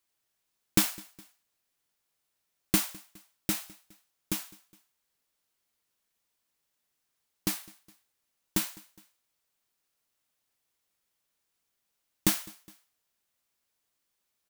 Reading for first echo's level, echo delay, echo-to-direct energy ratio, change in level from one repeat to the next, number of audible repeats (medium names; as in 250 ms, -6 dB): -23.5 dB, 207 ms, -22.5 dB, -5.5 dB, 2